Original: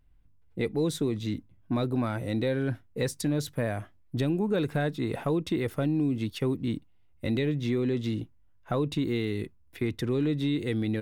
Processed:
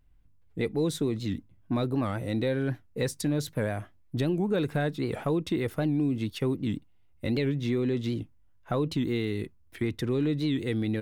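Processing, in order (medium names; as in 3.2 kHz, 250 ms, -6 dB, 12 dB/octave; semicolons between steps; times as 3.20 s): warped record 78 rpm, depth 160 cents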